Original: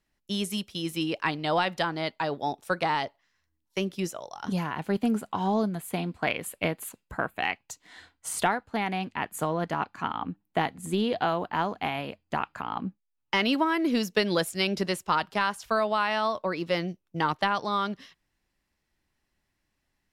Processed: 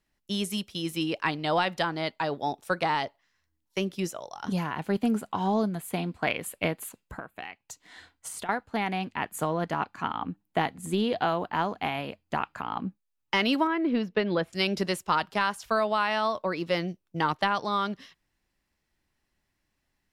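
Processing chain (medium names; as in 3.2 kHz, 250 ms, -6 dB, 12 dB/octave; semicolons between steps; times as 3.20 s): 6.85–8.49 s: compression 10:1, threshold -36 dBFS, peak gain reduction 16.5 dB; 13.67–14.53 s: distance through air 360 m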